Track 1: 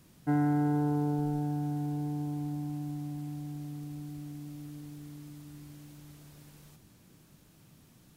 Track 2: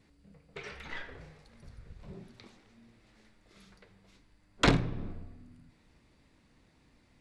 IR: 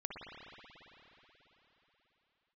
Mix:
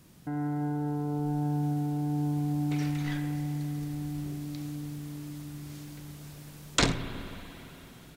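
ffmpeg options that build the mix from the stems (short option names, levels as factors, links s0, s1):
-filter_complex "[0:a]alimiter=level_in=2:limit=0.0631:level=0:latency=1,volume=0.501,dynaudnorm=f=300:g=3:m=1.58,volume=1,asplit=2[s0][s1];[s1]volume=0.531[s2];[1:a]equalizer=f=7400:w=0.68:g=13.5,adelay=2150,volume=0.596,asplit=2[s3][s4];[s4]volume=0.447[s5];[2:a]atrim=start_sample=2205[s6];[s2][s5]amix=inputs=2:normalize=0[s7];[s7][s6]afir=irnorm=-1:irlink=0[s8];[s0][s3][s8]amix=inputs=3:normalize=0"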